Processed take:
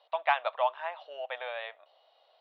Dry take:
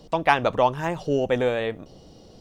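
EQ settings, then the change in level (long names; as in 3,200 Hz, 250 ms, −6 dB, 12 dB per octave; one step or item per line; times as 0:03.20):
Chebyshev band-pass filter 620–3,900 Hz, order 4
−6.5 dB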